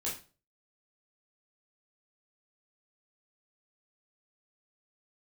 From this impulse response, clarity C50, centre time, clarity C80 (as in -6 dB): 7.0 dB, 31 ms, 13.0 dB